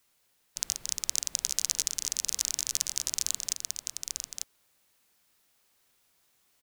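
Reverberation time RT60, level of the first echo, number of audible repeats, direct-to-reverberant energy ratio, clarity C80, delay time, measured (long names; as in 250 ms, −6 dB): no reverb audible, −4.5 dB, 1, no reverb audible, no reverb audible, 895 ms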